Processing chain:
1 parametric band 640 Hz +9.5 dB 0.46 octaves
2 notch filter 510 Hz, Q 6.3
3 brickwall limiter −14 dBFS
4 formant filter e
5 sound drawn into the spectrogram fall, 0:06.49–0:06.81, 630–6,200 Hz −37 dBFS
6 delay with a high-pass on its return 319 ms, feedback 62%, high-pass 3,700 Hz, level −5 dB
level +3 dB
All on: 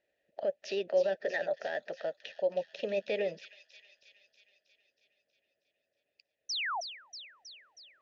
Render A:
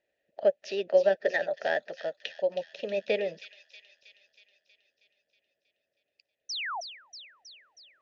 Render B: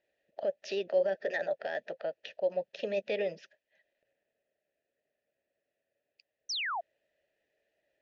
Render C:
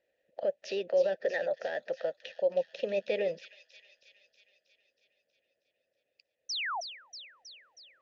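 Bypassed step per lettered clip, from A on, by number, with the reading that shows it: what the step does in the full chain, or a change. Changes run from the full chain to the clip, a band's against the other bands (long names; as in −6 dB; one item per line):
3, average gain reduction 2.0 dB
6, echo-to-direct ratio −15.0 dB to none audible
2, 500 Hz band +2.0 dB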